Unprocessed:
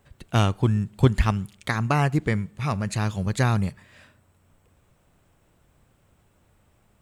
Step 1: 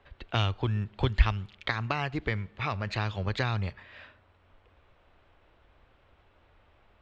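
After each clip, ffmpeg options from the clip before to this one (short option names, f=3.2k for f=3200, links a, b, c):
-filter_complex "[0:a]lowpass=f=3.9k:w=0.5412,lowpass=f=3.9k:w=1.3066,equalizer=f=160:t=o:w=1.5:g=-14.5,acrossover=split=140|3000[a][b][c];[b]acompressor=threshold=-34dB:ratio=4[d];[a][d][c]amix=inputs=3:normalize=0,volume=4dB"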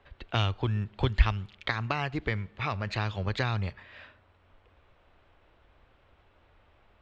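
-af anull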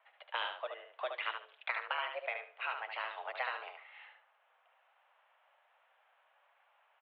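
-filter_complex "[0:a]flanger=delay=2.3:depth=6.1:regen=-55:speed=1.2:shape=triangular,asplit=2[a][b];[b]aecho=0:1:73|146|219:0.501|0.1|0.02[c];[a][c]amix=inputs=2:normalize=0,highpass=f=320:t=q:w=0.5412,highpass=f=320:t=q:w=1.307,lowpass=f=3k:t=q:w=0.5176,lowpass=f=3k:t=q:w=0.7071,lowpass=f=3k:t=q:w=1.932,afreqshift=240,volume=-1.5dB"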